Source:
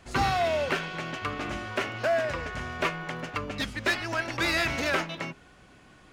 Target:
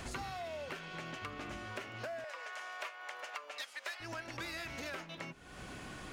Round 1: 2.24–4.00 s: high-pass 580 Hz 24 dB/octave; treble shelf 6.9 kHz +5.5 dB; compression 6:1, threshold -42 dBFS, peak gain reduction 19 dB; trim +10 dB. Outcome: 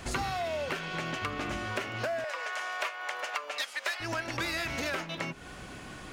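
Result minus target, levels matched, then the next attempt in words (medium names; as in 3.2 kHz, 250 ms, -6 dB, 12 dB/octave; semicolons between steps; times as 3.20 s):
compression: peak gain reduction -9.5 dB
2.24–4.00 s: high-pass 580 Hz 24 dB/octave; treble shelf 6.9 kHz +5.5 dB; compression 6:1, threshold -53.5 dBFS, peak gain reduction 28.5 dB; trim +10 dB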